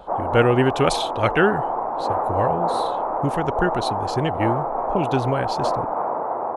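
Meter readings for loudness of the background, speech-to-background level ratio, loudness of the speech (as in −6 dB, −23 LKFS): −24.5 LKFS, 1.0 dB, −23.5 LKFS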